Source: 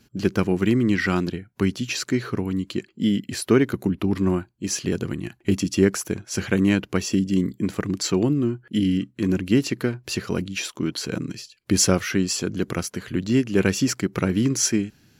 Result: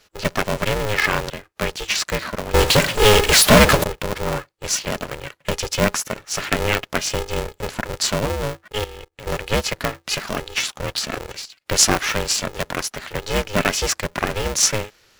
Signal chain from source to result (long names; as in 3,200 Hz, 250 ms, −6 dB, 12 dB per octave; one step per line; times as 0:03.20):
meter weighting curve A
0:02.54–0:03.84: power curve on the samples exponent 0.35
0:08.84–0:09.27: output level in coarse steps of 21 dB
ring modulator with a square carrier 210 Hz
level +5.5 dB